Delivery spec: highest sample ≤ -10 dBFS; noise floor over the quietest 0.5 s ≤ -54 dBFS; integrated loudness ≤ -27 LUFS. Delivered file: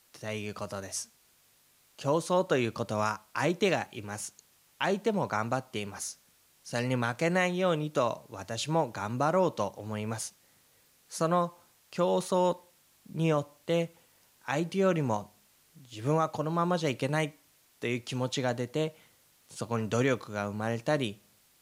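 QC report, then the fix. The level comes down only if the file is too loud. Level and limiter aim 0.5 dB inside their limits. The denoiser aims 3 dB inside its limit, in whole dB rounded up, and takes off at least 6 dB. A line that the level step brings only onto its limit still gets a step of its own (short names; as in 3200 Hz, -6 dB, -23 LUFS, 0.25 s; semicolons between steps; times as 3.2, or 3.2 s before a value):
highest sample -13.5 dBFS: OK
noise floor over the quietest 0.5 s -65 dBFS: OK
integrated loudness -31.0 LUFS: OK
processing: none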